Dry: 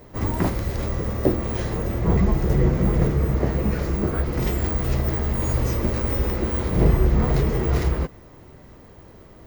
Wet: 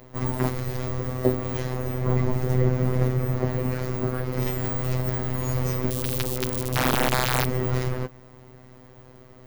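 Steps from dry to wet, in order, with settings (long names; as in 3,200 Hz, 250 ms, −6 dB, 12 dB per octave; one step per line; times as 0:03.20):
phases set to zero 127 Hz
0:05.90–0:07.46: wrap-around overflow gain 13.5 dB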